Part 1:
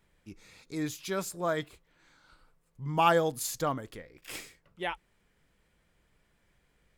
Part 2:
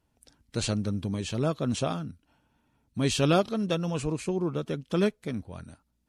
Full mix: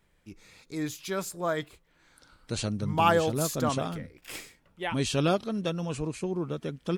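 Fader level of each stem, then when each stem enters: +1.0, -2.5 dB; 0.00, 1.95 s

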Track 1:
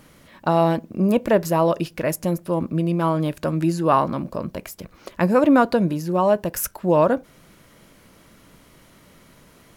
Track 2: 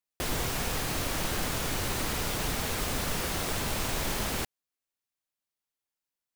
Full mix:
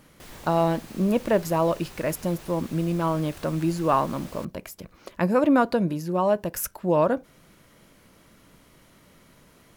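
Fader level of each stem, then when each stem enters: -4.0, -14.0 dB; 0.00, 0.00 s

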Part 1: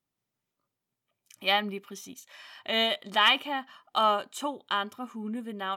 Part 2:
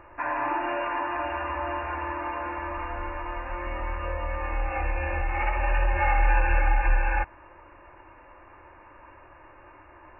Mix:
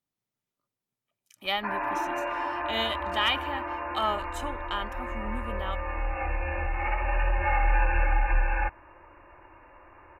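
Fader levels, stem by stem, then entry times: -4.0, -2.0 dB; 0.00, 1.45 s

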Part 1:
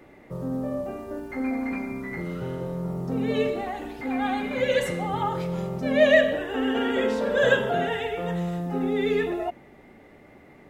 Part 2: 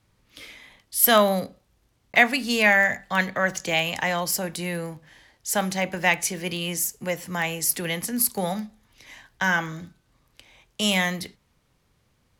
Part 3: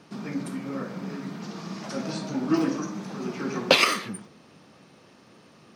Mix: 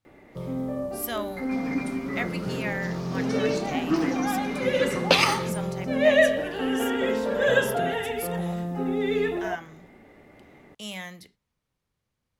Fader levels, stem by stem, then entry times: -1.0, -14.5, -1.0 dB; 0.05, 0.00, 1.40 s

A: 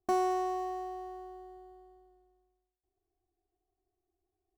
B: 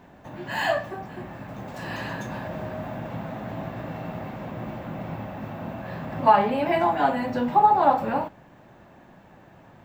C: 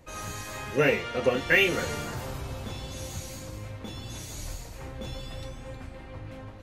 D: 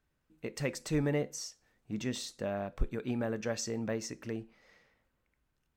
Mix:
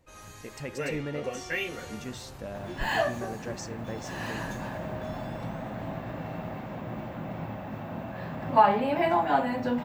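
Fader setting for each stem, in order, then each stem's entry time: -16.0, -2.5, -10.5, -4.0 dB; 1.15, 2.30, 0.00, 0.00 s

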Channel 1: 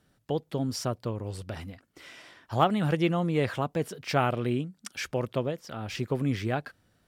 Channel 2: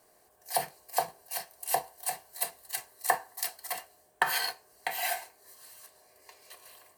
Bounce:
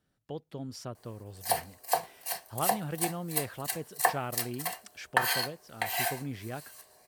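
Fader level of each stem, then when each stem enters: -10.0, +1.0 dB; 0.00, 0.95 s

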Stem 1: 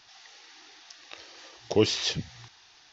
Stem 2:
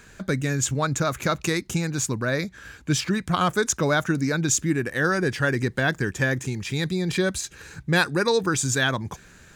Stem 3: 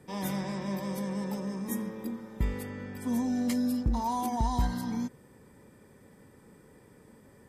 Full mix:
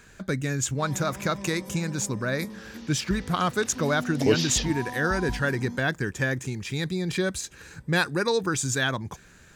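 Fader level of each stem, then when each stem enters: -0.5, -3.0, -6.0 dB; 2.50, 0.00, 0.70 s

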